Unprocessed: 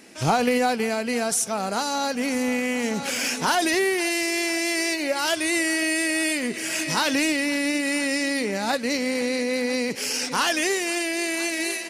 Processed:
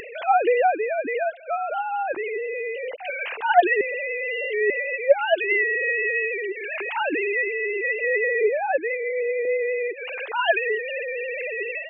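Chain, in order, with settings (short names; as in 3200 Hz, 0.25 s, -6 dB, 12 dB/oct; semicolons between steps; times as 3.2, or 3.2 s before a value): sine-wave speech; 2.46–3.1 bell 1200 Hz -14.5 dB 0.92 oct; upward compressor, threshold -25 dBFS; 3.81–4.7 reverse; 8.04–8.67 low shelf 500 Hz +10 dB; 9.45–10.46 HPF 270 Hz 24 dB/oct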